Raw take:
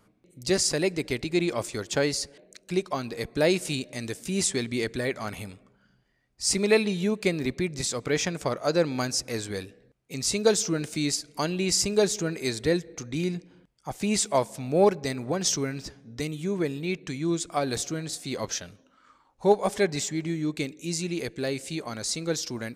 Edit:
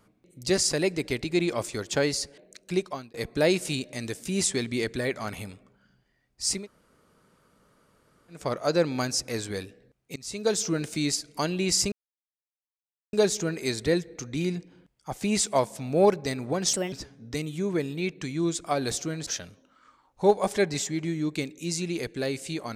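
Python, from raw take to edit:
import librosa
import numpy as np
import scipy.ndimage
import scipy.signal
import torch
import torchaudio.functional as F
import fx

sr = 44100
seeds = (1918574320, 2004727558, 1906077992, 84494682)

y = fx.edit(x, sr, fx.fade_out_span(start_s=2.79, length_s=0.35),
    fx.room_tone_fill(start_s=6.56, length_s=1.84, crossfade_s=0.24),
    fx.fade_in_from(start_s=10.16, length_s=0.55, floor_db=-20.5),
    fx.insert_silence(at_s=11.92, length_s=1.21),
    fx.speed_span(start_s=15.52, length_s=0.26, speed=1.34),
    fx.cut(start_s=18.12, length_s=0.36), tone=tone)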